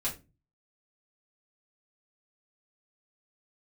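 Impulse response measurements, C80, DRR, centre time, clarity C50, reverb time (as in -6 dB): 18.5 dB, -7.0 dB, 17 ms, 11.5 dB, 0.25 s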